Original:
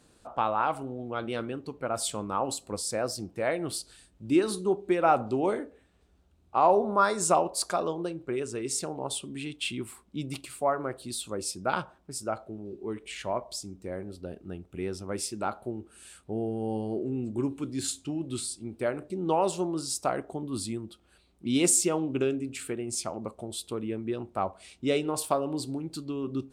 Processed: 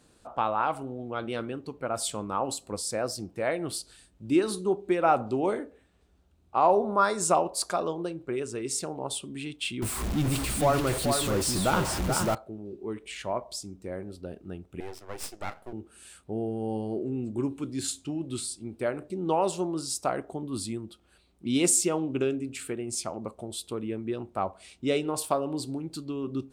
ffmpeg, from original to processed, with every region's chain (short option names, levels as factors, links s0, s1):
-filter_complex "[0:a]asettb=1/sr,asplit=3[s0][s1][s2];[s0]atrim=end=9.824[s3];[s1]atrim=start=9.82:end=12.35,asetpts=PTS-STARTPTS,afade=t=in:d=0.004:c=qsin,afade=t=out:st=2.526:d=0.004:c=qsin,aeval=exprs='val(0)+0.5*0.0355*sgn(val(0))':c=same,lowshelf=f=150:g=9.5,aecho=1:1:431:0.562,atrim=end_sample=111573[s4];[s2]atrim=start=12.346[s5];[s3][s4]acrossfade=d=0.004:c1=hsin:c2=qsin[s6];[s6][s5]acrossfade=d=0.004:c1=qsin:c2=hsin,asettb=1/sr,asplit=3[s7][s8][s9];[s7]atrim=end=14.804[s10];[s8]atrim=start=14.8:end=15.73,asetpts=PTS-STARTPTS,afade=t=in:d=0.004:c=qsin,afade=t=out:st=0.926:d=0.004:c=qsin,highpass=f=350:w=0.5412,highpass=f=350:w=1.3066,aeval=exprs='max(val(0),0)':c=same[s11];[s9]atrim=start=15.726[s12];[s10][s11]acrossfade=d=0.004:c1=hsin:c2=qsin[s13];[s13][s12]acrossfade=d=0.004:c1=qsin:c2=hsin"